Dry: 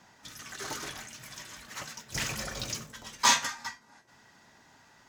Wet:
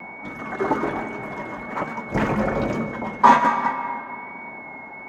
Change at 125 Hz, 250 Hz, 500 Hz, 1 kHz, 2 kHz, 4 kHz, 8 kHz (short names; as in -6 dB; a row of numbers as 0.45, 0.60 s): +13.5 dB, +20.5 dB, +20.0 dB, +15.5 dB, +7.5 dB, -9.0 dB, under -15 dB